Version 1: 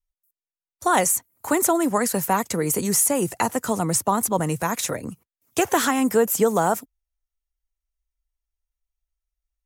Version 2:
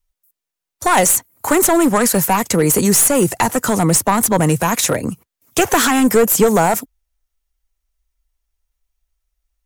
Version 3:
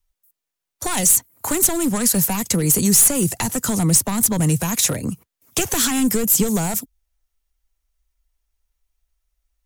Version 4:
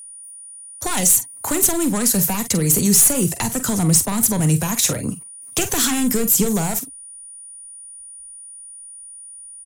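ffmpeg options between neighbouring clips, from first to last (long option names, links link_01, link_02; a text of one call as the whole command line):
ffmpeg -i in.wav -filter_complex "[0:a]asplit=2[link_01][link_02];[link_02]alimiter=limit=-17dB:level=0:latency=1:release=32,volume=0.5dB[link_03];[link_01][link_03]amix=inputs=2:normalize=0,aeval=exprs='clip(val(0),-1,0.178)':channel_layout=same,volume=4.5dB" out.wav
ffmpeg -i in.wav -filter_complex "[0:a]acrossover=split=240|3000[link_01][link_02][link_03];[link_02]acompressor=threshold=-29dB:ratio=4[link_04];[link_01][link_04][link_03]amix=inputs=3:normalize=0" out.wav
ffmpeg -i in.wav -af "aecho=1:1:44|51:0.266|0.141,aeval=exprs='val(0)+0.0158*sin(2*PI*9500*n/s)':channel_layout=same" out.wav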